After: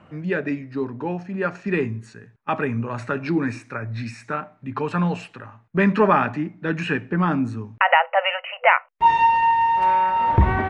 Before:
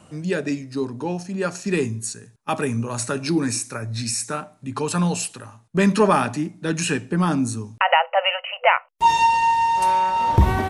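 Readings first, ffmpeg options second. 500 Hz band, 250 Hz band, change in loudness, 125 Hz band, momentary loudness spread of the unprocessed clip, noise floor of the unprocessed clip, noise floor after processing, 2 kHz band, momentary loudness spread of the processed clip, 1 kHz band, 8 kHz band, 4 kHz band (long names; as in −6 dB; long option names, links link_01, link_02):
−0.5 dB, −1.0 dB, 0.0 dB, −1.0 dB, 11 LU, −54 dBFS, −55 dBFS, +2.0 dB, 13 LU, +0.5 dB, below −20 dB, −5.5 dB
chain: -af "lowpass=frequency=2000:width_type=q:width=1.6,volume=-1dB"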